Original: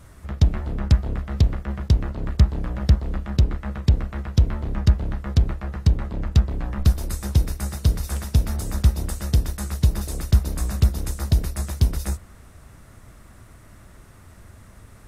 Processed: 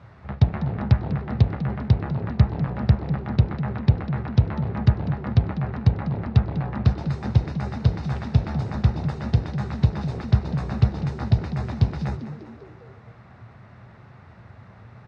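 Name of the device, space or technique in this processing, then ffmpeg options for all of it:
frequency-shifting delay pedal into a guitar cabinet: -filter_complex "[0:a]asplit=6[a][b][c][d][e][f];[b]adelay=198,afreqshift=80,volume=-13.5dB[g];[c]adelay=396,afreqshift=160,volume=-19dB[h];[d]adelay=594,afreqshift=240,volume=-24.5dB[i];[e]adelay=792,afreqshift=320,volume=-30dB[j];[f]adelay=990,afreqshift=400,volume=-35.6dB[k];[a][g][h][i][j][k]amix=inputs=6:normalize=0,highpass=61,highpass=86,equalizer=f=120:t=q:w=4:g=8,equalizer=f=300:t=q:w=4:g=-7,equalizer=f=810:t=q:w=4:g=6,equalizer=f=3.2k:t=q:w=4:g=-6,lowpass=f=3.9k:w=0.5412,lowpass=f=3.9k:w=1.3066,volume=1dB"

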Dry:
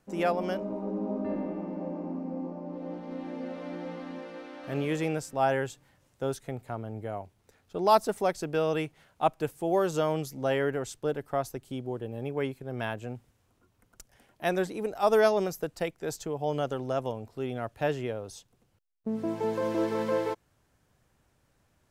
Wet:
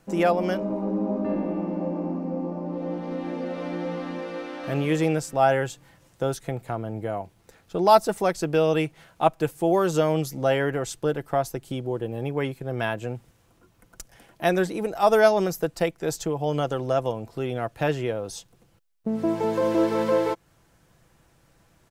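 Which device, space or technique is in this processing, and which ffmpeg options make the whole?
parallel compression: -filter_complex "[0:a]asplit=2[a][b];[b]acompressor=threshold=-38dB:ratio=6,volume=-2dB[c];[a][c]amix=inputs=2:normalize=0,aecho=1:1:6:0.33,volume=3.5dB"

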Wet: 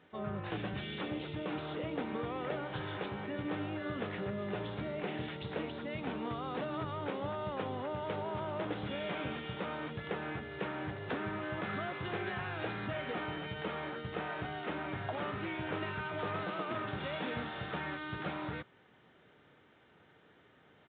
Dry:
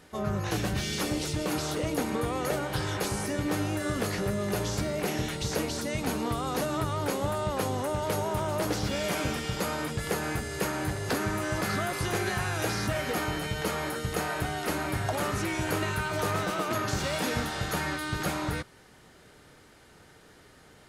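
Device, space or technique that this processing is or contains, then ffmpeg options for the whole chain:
Bluetooth headset: -af "highpass=110,aresample=8000,aresample=44100,volume=-7.5dB" -ar 16000 -c:a sbc -b:a 64k

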